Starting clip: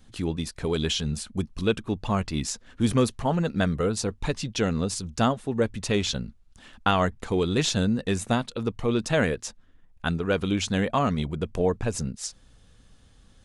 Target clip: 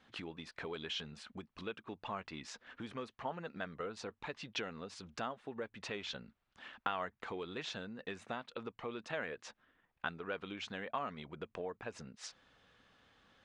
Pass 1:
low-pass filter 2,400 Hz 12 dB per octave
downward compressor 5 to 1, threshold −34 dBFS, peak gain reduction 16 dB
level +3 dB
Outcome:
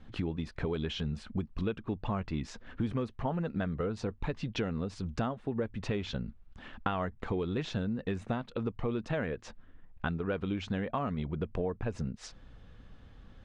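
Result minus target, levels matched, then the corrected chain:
1,000 Hz band −4.5 dB
low-pass filter 2,400 Hz 12 dB per octave
downward compressor 5 to 1, threshold −34 dBFS, peak gain reduction 16 dB
high-pass filter 1,100 Hz 6 dB per octave
level +3 dB

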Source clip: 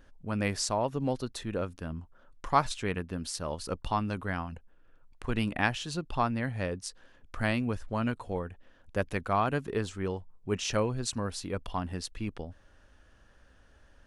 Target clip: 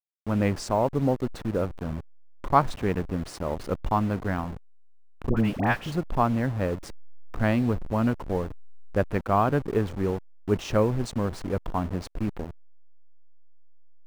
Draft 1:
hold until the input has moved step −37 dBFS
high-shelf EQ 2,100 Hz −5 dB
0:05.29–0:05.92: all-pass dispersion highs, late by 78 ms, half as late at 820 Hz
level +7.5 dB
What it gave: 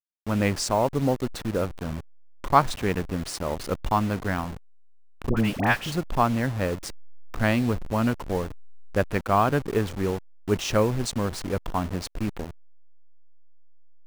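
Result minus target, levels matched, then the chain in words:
4,000 Hz band +6.5 dB
hold until the input has moved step −37 dBFS
high-shelf EQ 2,100 Hz −15 dB
0:05.29–0:05.92: all-pass dispersion highs, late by 78 ms, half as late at 820 Hz
level +7.5 dB

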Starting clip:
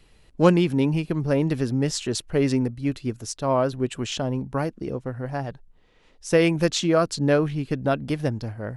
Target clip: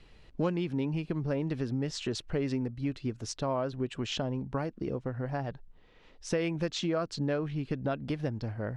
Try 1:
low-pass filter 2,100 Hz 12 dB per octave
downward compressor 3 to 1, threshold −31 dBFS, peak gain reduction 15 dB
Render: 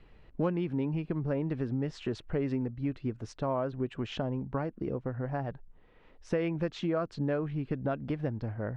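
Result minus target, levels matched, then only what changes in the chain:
4,000 Hz band −8.0 dB
change: low-pass filter 5,000 Hz 12 dB per octave

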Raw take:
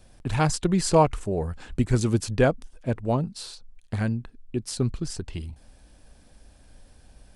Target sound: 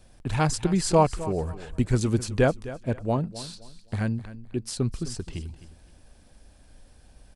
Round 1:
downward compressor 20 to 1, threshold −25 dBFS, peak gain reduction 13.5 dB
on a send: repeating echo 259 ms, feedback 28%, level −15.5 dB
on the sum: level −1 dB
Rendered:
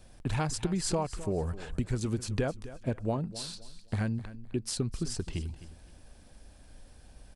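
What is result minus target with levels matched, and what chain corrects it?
downward compressor: peak gain reduction +13.5 dB
on a send: repeating echo 259 ms, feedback 28%, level −15.5 dB
on the sum: level −1 dB

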